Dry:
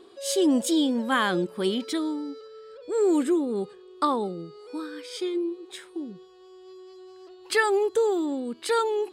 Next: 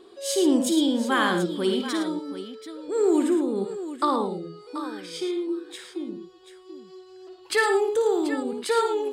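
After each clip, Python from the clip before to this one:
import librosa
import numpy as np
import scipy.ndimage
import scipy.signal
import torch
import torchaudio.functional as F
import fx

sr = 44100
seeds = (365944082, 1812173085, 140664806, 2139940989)

y = fx.echo_multitap(x, sr, ms=(56, 80, 109, 734), db=(-8.5, -12.5, -9.5, -12.0))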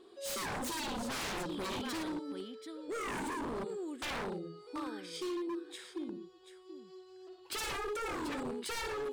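y = 10.0 ** (-25.5 / 20.0) * (np.abs((x / 10.0 ** (-25.5 / 20.0) + 3.0) % 4.0 - 2.0) - 1.0)
y = y * 10.0 ** (-7.5 / 20.0)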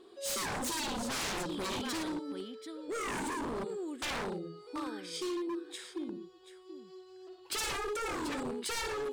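y = fx.dynamic_eq(x, sr, hz=7100.0, q=0.75, threshold_db=-55.0, ratio=4.0, max_db=4)
y = y * 10.0 ** (1.5 / 20.0)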